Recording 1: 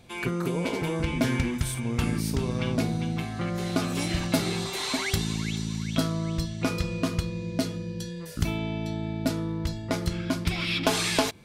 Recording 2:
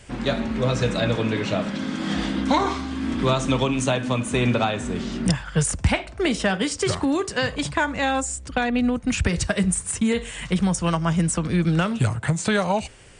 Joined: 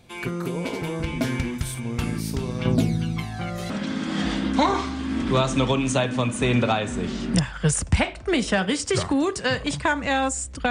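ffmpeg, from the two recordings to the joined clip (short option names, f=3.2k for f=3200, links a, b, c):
-filter_complex "[0:a]asettb=1/sr,asplit=3[a][b][c];[a]atrim=end=2.654[d];[b]atrim=start=2.65:end=3.7,asetpts=PTS-STARTPTS,afade=t=in:d=0.004:c=qsin,afade=t=out:st=1.046:d=0.004:c=qsin,aphaser=in_gain=1:out_gain=1:delay=1.6:decay=0.6:speed=0.53:type=triangular[e];[c]atrim=start=3.696[f];[d][e]acrossfade=d=0.004:c1=hsin:c2=qsin[g];[g][f]acrossfade=d=0.004:c1=qsin:c2=hsin,apad=whole_dur=10.7,atrim=end=10.7,atrim=end=3.702[h];[1:a]atrim=start=1.618:end=8.62[i];[h][i]acrossfade=d=0.004:c1=hsin:c2=hsin"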